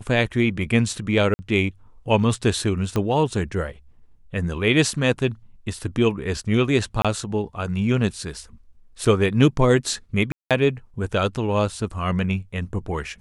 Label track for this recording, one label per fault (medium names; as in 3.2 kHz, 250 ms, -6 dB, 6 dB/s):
1.340000	1.390000	dropout 50 ms
2.960000	2.960000	pop -11 dBFS
7.020000	7.050000	dropout 26 ms
9.050000	9.050000	dropout 4.9 ms
10.320000	10.510000	dropout 187 ms